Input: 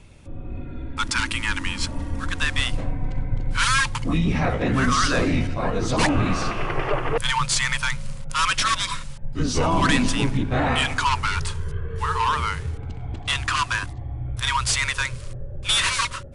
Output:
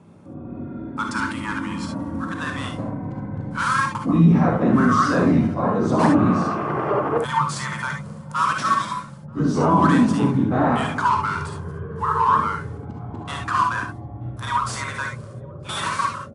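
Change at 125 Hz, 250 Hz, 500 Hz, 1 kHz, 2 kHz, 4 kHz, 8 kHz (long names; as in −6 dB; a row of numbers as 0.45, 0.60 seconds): +2.0, +7.0, +3.5, +4.5, −3.0, −10.5, −9.5 decibels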